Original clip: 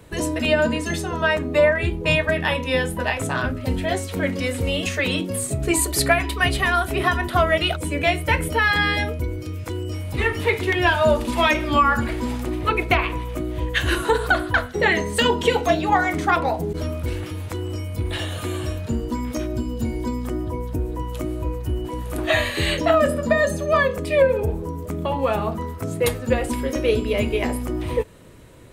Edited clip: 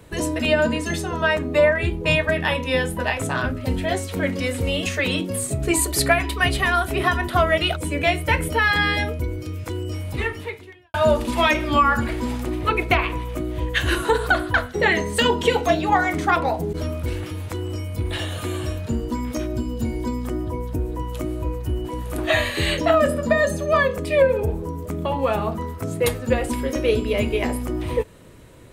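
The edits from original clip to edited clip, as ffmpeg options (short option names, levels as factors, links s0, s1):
-filter_complex "[0:a]asplit=2[s0][s1];[s0]atrim=end=10.94,asetpts=PTS-STARTPTS,afade=t=out:st=10.09:d=0.85:c=qua[s2];[s1]atrim=start=10.94,asetpts=PTS-STARTPTS,afade=t=in:d=0.004:c=hsin[s3];[s2][s3]concat=n=2:v=0:a=1"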